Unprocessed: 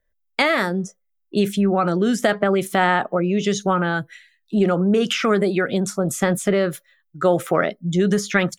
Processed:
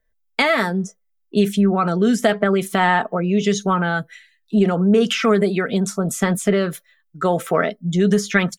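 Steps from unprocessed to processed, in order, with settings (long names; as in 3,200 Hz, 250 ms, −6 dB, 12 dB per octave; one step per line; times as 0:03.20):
comb filter 4.5 ms, depth 46%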